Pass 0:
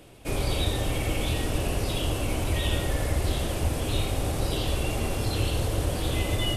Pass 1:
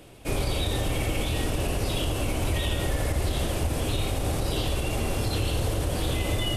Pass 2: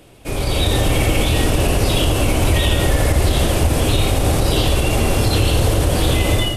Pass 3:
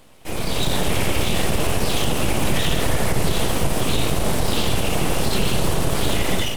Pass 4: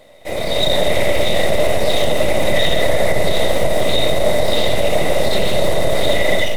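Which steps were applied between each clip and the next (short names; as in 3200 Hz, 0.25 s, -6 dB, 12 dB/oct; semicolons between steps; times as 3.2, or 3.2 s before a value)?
limiter -18.5 dBFS, peak gain reduction 5 dB; gain +1.5 dB
AGC gain up to 8.5 dB; gain +2.5 dB
full-wave rectifier; gain -2 dB
small resonant body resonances 590/2000/3700 Hz, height 18 dB, ringing for 25 ms; reverb RT60 0.95 s, pre-delay 5 ms, DRR 18.5 dB; gain -2.5 dB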